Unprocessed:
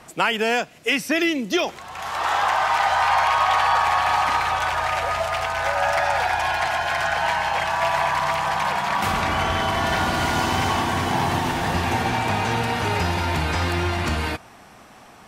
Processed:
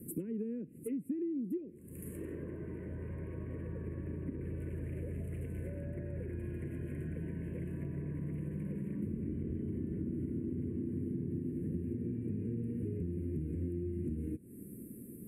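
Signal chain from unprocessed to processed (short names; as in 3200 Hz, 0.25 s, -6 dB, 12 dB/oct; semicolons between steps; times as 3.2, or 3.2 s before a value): HPF 290 Hz 6 dB/oct; treble ducked by the level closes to 1500 Hz, closed at -17 dBFS; inverse Chebyshev band-stop 680–6400 Hz, stop band 40 dB; compressor, threshold -46 dBFS, peak gain reduction 21 dB; fixed phaser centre 2000 Hz, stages 4; gain +11.5 dB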